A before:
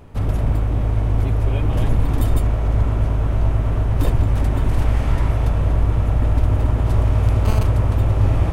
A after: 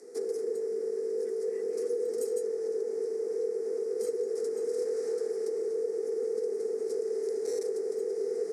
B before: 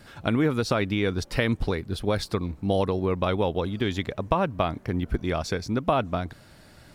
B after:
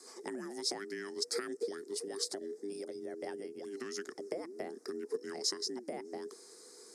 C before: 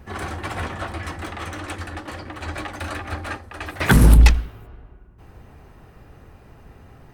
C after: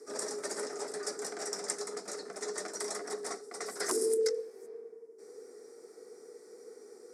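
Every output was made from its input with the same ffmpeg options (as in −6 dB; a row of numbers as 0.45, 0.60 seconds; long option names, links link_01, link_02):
-af "highshelf=frequency=3200:gain=-9.5,afreqshift=-500,acompressor=threshold=-28dB:ratio=3,aexciter=amount=13.9:drive=4:freq=4900,highpass=frequency=290:width=0.5412,highpass=frequency=290:width=1.3066,equalizer=frequency=300:width_type=q:width=4:gain=-5,equalizer=frequency=500:width_type=q:width=4:gain=4,equalizer=frequency=980:width_type=q:width=4:gain=-7,equalizer=frequency=1900:width_type=q:width=4:gain=4,equalizer=frequency=2800:width_type=q:width=4:gain=-10,equalizer=frequency=5200:width_type=q:width=4:gain=7,lowpass=frequency=9800:width=0.5412,lowpass=frequency=9800:width=1.3066,volume=-6dB"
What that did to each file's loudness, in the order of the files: −12.5, −13.0, −14.0 LU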